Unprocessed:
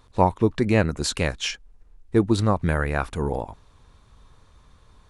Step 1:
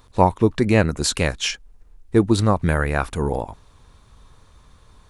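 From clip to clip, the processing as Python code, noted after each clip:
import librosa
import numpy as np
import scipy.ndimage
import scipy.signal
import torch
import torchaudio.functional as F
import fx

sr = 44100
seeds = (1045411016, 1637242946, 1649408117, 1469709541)

y = fx.high_shelf(x, sr, hz=9200.0, db=7.0)
y = F.gain(torch.from_numpy(y), 3.0).numpy()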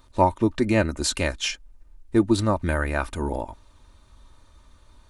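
y = x + 0.56 * np.pad(x, (int(3.3 * sr / 1000.0), 0))[:len(x)]
y = F.gain(torch.from_numpy(y), -4.5).numpy()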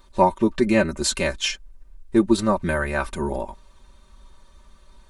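y = x + 0.75 * np.pad(x, (int(5.2 * sr / 1000.0), 0))[:len(x)]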